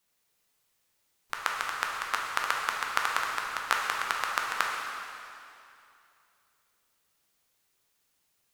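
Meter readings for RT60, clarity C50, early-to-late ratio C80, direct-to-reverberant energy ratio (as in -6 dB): 2.6 s, 0.5 dB, 2.0 dB, -1.5 dB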